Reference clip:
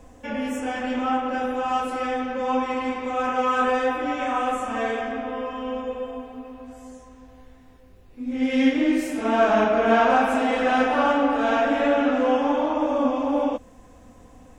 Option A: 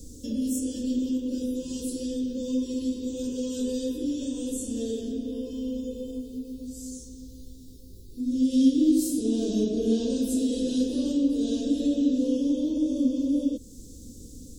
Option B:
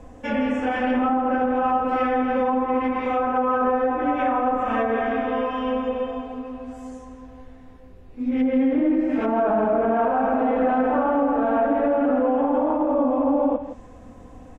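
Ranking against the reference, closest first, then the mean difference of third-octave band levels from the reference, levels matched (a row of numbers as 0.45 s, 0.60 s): B, A; 5.5 dB, 12.5 dB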